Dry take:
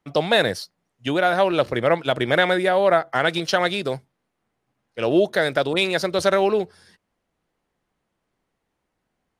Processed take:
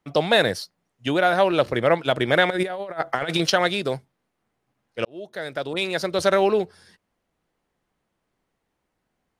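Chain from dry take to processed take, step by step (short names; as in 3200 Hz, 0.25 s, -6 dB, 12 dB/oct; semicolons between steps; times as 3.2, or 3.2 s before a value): 2.5–3.5 negative-ratio compressor -24 dBFS, ratio -0.5; 5.05–6.37 fade in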